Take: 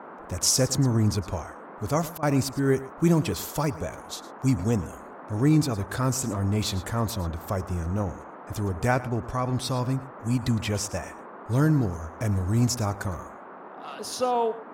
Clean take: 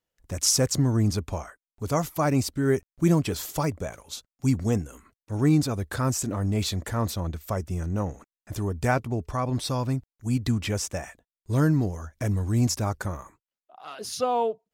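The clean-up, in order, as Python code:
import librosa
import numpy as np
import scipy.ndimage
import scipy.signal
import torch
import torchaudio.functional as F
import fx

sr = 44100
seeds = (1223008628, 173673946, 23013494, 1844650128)

y = fx.fix_interpolate(x, sr, at_s=(2.18,), length_ms=46.0)
y = fx.noise_reduce(y, sr, print_start_s=13.28, print_end_s=13.78, reduce_db=30.0)
y = fx.fix_echo_inverse(y, sr, delay_ms=110, level_db=-16.5)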